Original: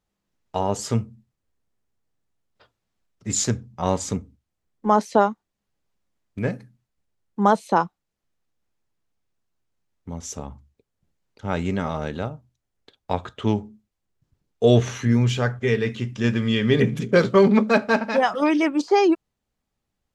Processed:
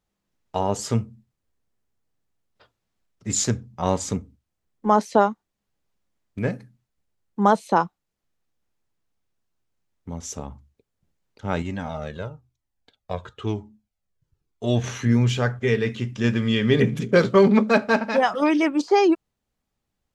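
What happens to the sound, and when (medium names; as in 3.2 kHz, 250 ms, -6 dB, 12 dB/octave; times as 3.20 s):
11.62–14.84 s: Shepard-style flanger falling 1 Hz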